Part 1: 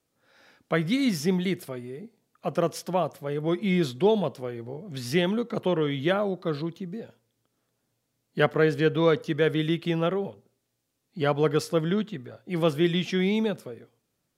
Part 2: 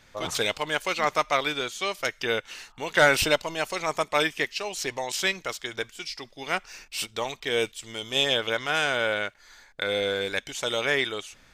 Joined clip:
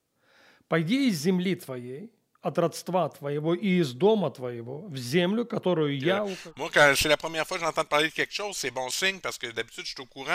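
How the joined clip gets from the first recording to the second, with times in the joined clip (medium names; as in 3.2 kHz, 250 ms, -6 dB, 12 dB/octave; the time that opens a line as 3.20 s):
part 1
6.22 s: go over to part 2 from 2.43 s, crossfade 0.64 s equal-power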